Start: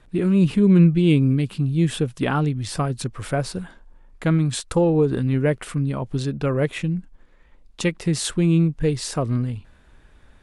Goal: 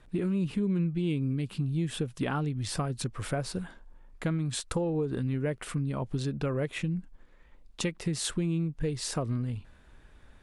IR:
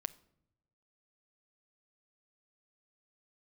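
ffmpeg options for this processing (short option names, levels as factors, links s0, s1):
-af "acompressor=threshold=0.0631:ratio=4,volume=0.668"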